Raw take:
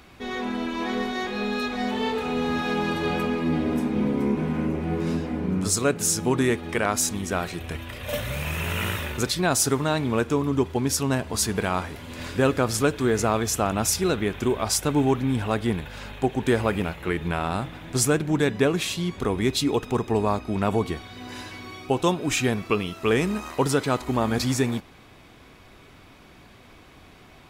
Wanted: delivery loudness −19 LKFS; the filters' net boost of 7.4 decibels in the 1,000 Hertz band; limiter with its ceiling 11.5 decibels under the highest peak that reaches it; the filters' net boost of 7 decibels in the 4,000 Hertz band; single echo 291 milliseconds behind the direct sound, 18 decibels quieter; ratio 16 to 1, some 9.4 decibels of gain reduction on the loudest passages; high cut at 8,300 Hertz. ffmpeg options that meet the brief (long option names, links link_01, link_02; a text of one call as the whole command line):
ffmpeg -i in.wav -af "lowpass=8300,equalizer=frequency=1000:width_type=o:gain=9,equalizer=frequency=4000:width_type=o:gain=8.5,acompressor=threshold=-22dB:ratio=16,alimiter=limit=-21.5dB:level=0:latency=1,aecho=1:1:291:0.126,volume=12dB" out.wav